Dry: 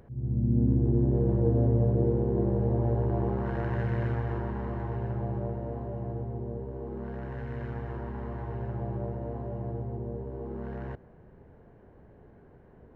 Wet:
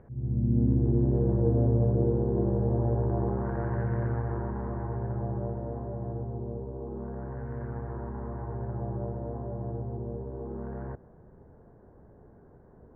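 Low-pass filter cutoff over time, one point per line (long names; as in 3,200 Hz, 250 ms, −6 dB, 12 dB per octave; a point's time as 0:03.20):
low-pass filter 24 dB per octave
0:00.78 2,000 Hz
0:01.60 1,600 Hz
0:06.08 1,600 Hz
0:06.75 1,200 Hz
0:07.57 1,500 Hz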